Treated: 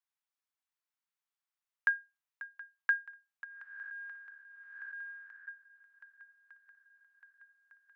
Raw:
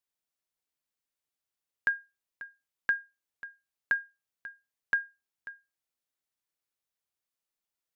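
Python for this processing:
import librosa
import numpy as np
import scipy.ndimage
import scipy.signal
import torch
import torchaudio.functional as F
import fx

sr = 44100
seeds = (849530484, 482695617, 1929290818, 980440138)

y = fx.spec_blur(x, sr, span_ms=454.0, at=(3.44, 5.48))
y = scipy.signal.sosfilt(scipy.signal.butter(4, 890.0, 'highpass', fs=sr, output='sos'), y)
y = fx.high_shelf(y, sr, hz=2400.0, db=-11.0)
y = fx.echo_swing(y, sr, ms=1205, ratio=1.5, feedback_pct=64, wet_db=-19.5)
y = y * 10.0 ** (2.5 / 20.0)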